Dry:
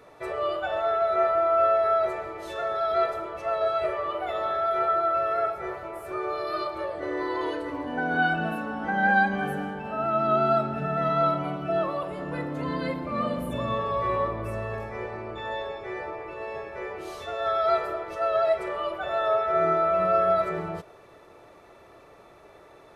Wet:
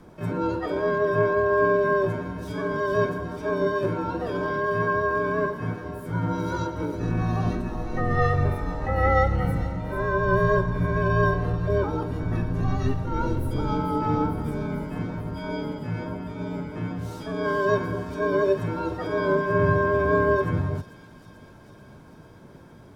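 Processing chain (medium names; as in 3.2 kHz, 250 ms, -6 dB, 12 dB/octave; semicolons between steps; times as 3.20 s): fifteen-band graphic EQ 160 Hz +11 dB, 400 Hz +7 dB, 2.5 kHz -10 dB; frequency shift -260 Hz; harmony voices +7 st -3 dB; feedback echo behind a high-pass 444 ms, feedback 72%, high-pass 4.1 kHz, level -7.5 dB; trim -1.5 dB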